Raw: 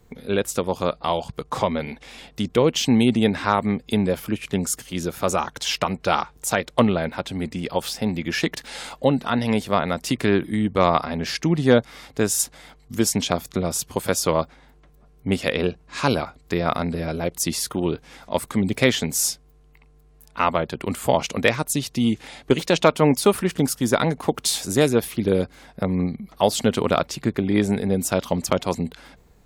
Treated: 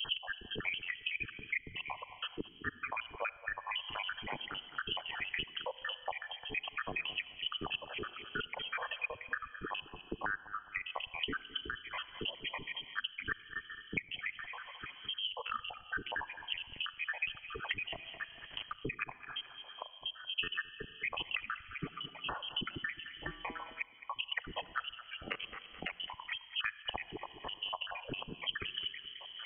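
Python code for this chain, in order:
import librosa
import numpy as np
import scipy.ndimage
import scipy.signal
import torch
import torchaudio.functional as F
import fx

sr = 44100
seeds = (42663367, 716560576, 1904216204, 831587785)

y = fx.spec_dropout(x, sr, seeds[0], share_pct=83)
y = fx.dereverb_blind(y, sr, rt60_s=0.51)
y = fx.over_compress(y, sr, threshold_db=-32.0, ratio=-0.5)
y = fx.transient(y, sr, attack_db=0, sustain_db=6)
y = fx.sample_gate(y, sr, floor_db=-47.0, at=(17.94, 18.75))
y = fx.comb_fb(y, sr, f0_hz=170.0, decay_s=0.63, harmonics='all', damping=0.0, mix_pct=80, at=(23.07, 23.79), fade=0.02)
y = fx.ring_mod(y, sr, carrier_hz=370.0, at=(25.02, 25.89), fade=0.02)
y = fx.echo_feedback(y, sr, ms=213, feedback_pct=23, wet_db=-17.5)
y = fx.room_shoebox(y, sr, seeds[1], volume_m3=2600.0, walls='mixed', distance_m=0.34)
y = fx.freq_invert(y, sr, carrier_hz=3200)
y = fx.band_squash(y, sr, depth_pct=100)
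y = F.gain(torch.from_numpy(y), -3.5).numpy()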